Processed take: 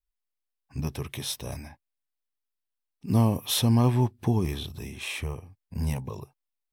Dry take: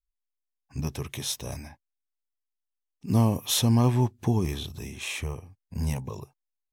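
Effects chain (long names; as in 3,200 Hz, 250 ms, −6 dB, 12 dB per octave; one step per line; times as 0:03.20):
parametric band 6,700 Hz −8 dB 0.36 octaves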